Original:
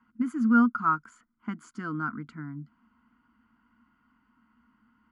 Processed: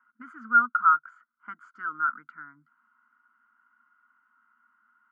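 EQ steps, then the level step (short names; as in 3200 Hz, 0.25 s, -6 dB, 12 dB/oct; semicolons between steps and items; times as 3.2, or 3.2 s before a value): band-pass 1400 Hz, Q 5.2; +8.0 dB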